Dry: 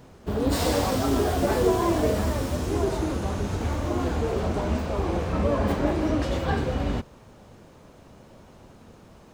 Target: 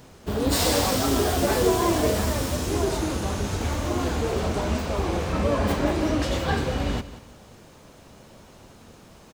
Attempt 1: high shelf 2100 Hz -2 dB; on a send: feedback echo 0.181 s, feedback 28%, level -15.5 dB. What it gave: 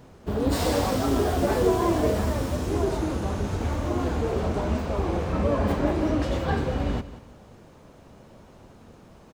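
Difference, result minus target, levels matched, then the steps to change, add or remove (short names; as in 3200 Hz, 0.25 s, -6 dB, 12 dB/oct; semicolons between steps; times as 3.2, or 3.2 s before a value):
4000 Hz band -6.5 dB
change: high shelf 2100 Hz +8 dB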